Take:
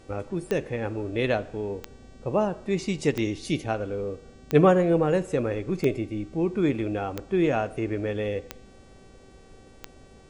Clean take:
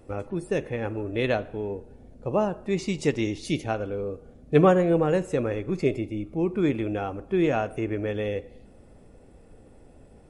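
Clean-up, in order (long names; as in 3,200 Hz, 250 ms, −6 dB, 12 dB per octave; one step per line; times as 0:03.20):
click removal
hum removal 383.9 Hz, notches 22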